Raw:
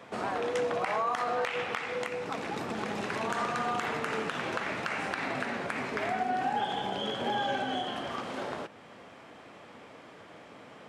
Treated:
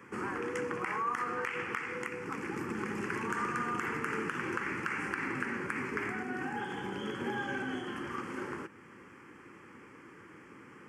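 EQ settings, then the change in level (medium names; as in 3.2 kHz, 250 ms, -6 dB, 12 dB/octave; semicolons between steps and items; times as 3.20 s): peaking EQ 350 Hz +8 dB 0.37 oct; static phaser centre 1.6 kHz, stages 4; 0.0 dB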